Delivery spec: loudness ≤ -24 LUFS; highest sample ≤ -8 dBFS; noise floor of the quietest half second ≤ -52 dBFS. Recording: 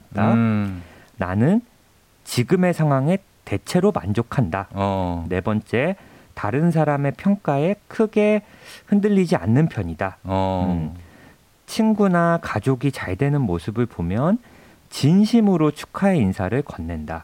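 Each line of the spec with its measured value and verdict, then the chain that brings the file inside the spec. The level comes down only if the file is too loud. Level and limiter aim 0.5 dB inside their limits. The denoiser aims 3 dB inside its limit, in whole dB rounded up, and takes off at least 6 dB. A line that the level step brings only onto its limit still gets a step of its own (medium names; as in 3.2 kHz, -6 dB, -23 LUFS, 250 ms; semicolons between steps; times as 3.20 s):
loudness -21.0 LUFS: fail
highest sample -6.5 dBFS: fail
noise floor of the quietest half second -56 dBFS: pass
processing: trim -3.5 dB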